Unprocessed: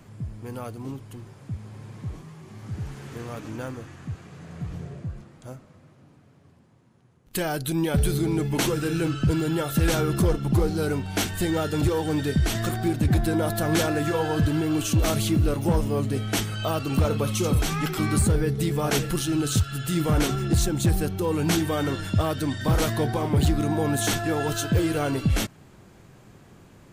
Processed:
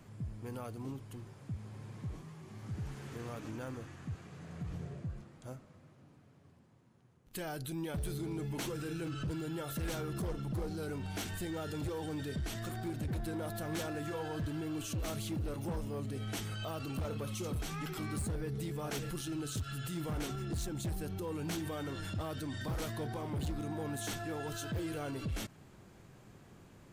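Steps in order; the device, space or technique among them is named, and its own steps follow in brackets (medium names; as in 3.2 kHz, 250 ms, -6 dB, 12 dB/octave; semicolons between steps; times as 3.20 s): clipper into limiter (hard clipper -18 dBFS, distortion -17 dB; peak limiter -26 dBFS, peak gain reduction 8 dB); trim -6.5 dB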